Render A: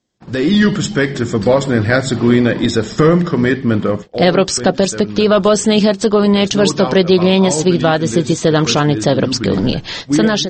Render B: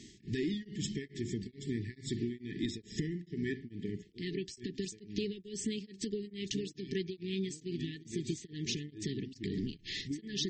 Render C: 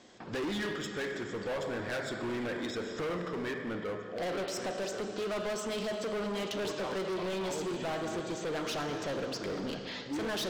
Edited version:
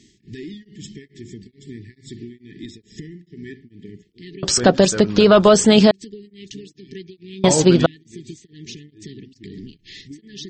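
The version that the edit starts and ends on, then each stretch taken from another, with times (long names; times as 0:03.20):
B
0:04.43–0:05.91: punch in from A
0:07.44–0:07.86: punch in from A
not used: C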